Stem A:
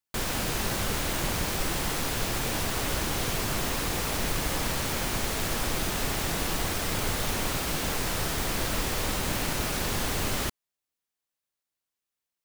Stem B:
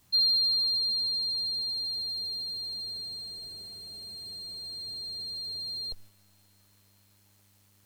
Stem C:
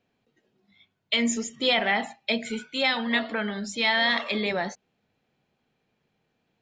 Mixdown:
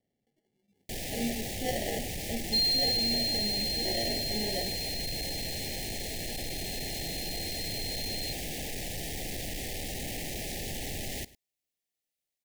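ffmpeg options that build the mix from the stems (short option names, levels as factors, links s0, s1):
-filter_complex "[0:a]asoftclip=type=tanh:threshold=0.0251,adelay=750,volume=0.891,asplit=2[s0][s1];[s1]volume=0.1[s2];[1:a]adelay=2400,volume=0.75[s3];[2:a]equalizer=f=2800:t=o:w=2.1:g=-10.5,acrusher=samples=35:mix=1:aa=0.000001,volume=0.473[s4];[s2]aecho=0:1:103:1[s5];[s0][s3][s4][s5]amix=inputs=4:normalize=0,asuperstop=centerf=1200:order=12:qfactor=1.3"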